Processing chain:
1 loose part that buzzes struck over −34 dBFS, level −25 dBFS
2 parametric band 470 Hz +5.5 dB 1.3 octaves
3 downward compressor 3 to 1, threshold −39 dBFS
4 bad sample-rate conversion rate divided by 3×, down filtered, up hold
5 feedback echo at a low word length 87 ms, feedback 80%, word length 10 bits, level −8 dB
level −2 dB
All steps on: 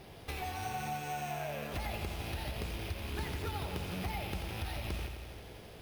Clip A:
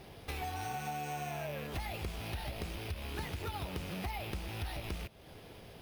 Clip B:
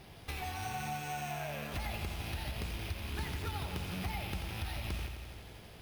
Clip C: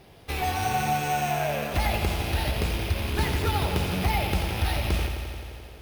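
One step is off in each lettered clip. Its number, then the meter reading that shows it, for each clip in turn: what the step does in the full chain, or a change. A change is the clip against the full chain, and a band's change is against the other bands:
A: 5, change in integrated loudness −1.0 LU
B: 2, 500 Hz band −4.0 dB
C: 3, average gain reduction 10.0 dB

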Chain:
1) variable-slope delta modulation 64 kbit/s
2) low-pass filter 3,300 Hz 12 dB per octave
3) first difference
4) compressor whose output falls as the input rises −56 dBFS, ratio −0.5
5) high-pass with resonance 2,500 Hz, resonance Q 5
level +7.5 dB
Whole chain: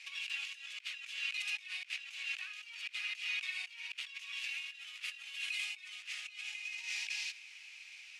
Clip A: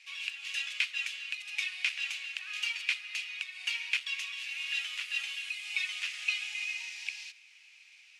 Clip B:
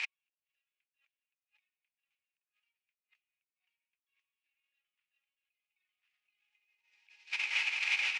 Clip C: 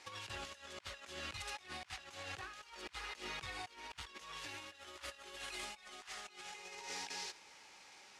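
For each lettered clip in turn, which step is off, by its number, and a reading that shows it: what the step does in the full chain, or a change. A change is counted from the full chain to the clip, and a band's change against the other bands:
4, change in crest factor +5.5 dB
3, 1 kHz band +8.5 dB
5, 1 kHz band +20.0 dB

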